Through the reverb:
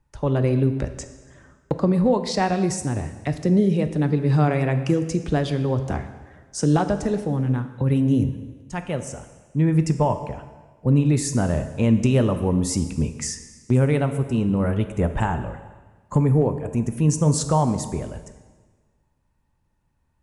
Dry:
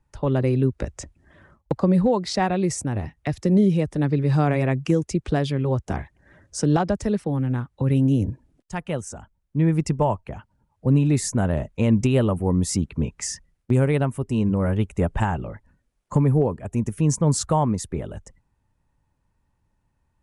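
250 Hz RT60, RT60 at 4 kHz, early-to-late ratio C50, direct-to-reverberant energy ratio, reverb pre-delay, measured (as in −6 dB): 1.4 s, 1.3 s, 10.5 dB, 8.5 dB, 5 ms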